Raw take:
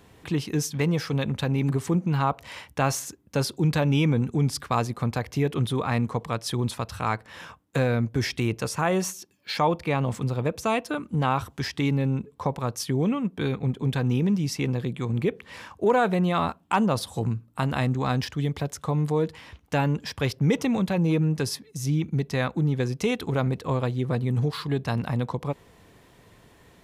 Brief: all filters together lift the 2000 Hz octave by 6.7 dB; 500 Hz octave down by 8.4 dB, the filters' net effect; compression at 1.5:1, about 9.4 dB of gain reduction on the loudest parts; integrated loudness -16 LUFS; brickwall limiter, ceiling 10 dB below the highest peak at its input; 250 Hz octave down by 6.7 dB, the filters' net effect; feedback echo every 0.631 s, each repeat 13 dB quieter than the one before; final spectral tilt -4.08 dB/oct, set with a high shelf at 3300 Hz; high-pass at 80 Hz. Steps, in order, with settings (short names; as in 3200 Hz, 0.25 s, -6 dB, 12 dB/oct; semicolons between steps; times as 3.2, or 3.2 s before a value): HPF 80 Hz; bell 250 Hz -8 dB; bell 500 Hz -8.5 dB; bell 2000 Hz +7.5 dB; high shelf 3300 Hz +5.5 dB; compressor 1.5:1, threshold -46 dBFS; limiter -24.5 dBFS; feedback echo 0.631 s, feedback 22%, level -13 dB; gain +20.5 dB